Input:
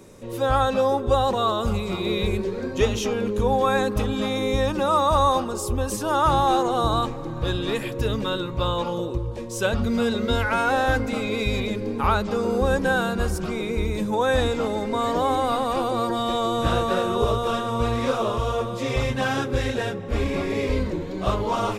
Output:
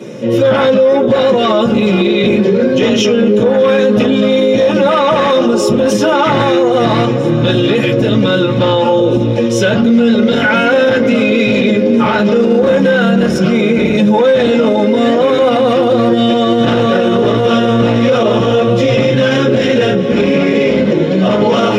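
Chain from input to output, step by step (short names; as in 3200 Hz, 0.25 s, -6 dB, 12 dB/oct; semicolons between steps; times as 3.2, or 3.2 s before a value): resonant low shelf 180 Hz +8 dB, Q 1.5; soft clip -16.5 dBFS, distortion -10 dB; weighting filter D; thin delay 0.805 s, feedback 83%, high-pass 2300 Hz, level -19 dB; reverb RT60 0.15 s, pre-delay 3 ms, DRR -8 dB; maximiser -0.5 dB; gain -2 dB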